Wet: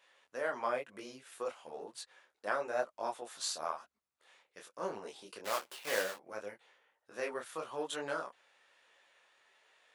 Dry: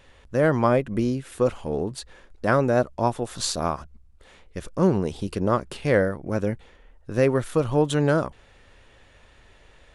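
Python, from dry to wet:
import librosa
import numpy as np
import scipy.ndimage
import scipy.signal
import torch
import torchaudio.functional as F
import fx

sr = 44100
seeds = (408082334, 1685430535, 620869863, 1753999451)

y = fx.block_float(x, sr, bits=3, at=(5.44, 6.15), fade=0.02)
y = scipy.signal.sosfilt(scipy.signal.butter(2, 690.0, 'highpass', fs=sr, output='sos'), y)
y = fx.detune_double(y, sr, cents=35)
y = y * 10.0 ** (-6.0 / 20.0)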